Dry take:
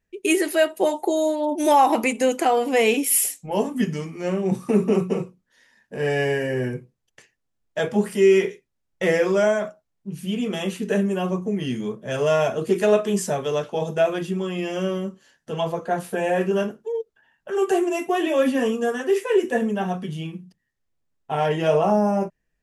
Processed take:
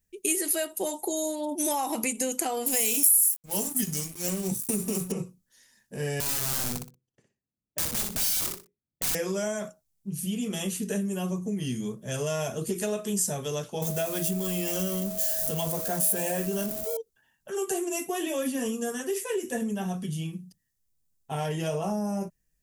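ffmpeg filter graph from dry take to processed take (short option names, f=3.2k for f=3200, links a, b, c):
-filter_complex "[0:a]asettb=1/sr,asplit=3[a][b][c];[a]atrim=end=2.664[d];[b]atrim=start=2.66:end=5.12,asetpts=PTS-STARTPTS,afade=t=in:d=0.004:c=qsin,afade=t=out:st=2.456:d=0.004:c=qsin,aeval=exprs='sgn(val(0))*max(abs(val(0))-0.0106,0)':c=same,aemphasis=mode=production:type=75fm,acompressor=threshold=-16dB:ratio=2.5:attack=3.2:release=140:knee=1:detection=peak[e];[c]atrim=start=5.116[f];[d][e]acrossfade=d=0.004:c1=hsin:c2=qsin[g];[g][f]acrossfade=d=0.004:c1=qsin:c2=hsin,asettb=1/sr,asplit=3[h][i][j];[h]atrim=end=6.204[k];[i]atrim=start=6.2:end=9.15,asetpts=PTS-STARTPTS,afade=t=in:d=0.004:c=qsin,afade=t=out:st=2.946:d=0.004:c=qsin,bandpass=f=250:t=q:w=0.82,aeval=exprs='(mod(17.8*val(0)+1,2)-1)/17.8':c=same,aecho=1:1:61|122|183:0.531|0.117|0.0257,atrim=end_sample=130095[l];[j]atrim=start=9.146[m];[k][l]acrossfade=d=0.004:c1=hsin:c2=qsin[n];[n][m]acrossfade=d=0.004:c1=qsin:c2=hsin,asettb=1/sr,asplit=3[o][p][q];[o]atrim=end=13.824[r];[p]atrim=start=13.82:end=16.97,asetpts=PTS-STARTPTS,afade=t=in:d=0.004:c=qsin,afade=t=out:st=3.146:d=0.004:c=qsin,aeval=exprs='val(0)+0.5*0.0188*sgn(val(0))':c=same,highshelf=f=9.9k:g=12,aeval=exprs='val(0)+0.0398*sin(2*PI*640*n/s)':c=same[s];[q]atrim=start=16.966[t];[r][s]acrossfade=d=0.004:c1=hsin:c2=qsin[u];[u][t]acrossfade=d=0.004:c1=qsin:c2=hsin,bass=f=250:g=9,treble=f=4k:g=14,acompressor=threshold=-18dB:ratio=4,highshelf=f=7.8k:g=8.5,volume=-8.5dB"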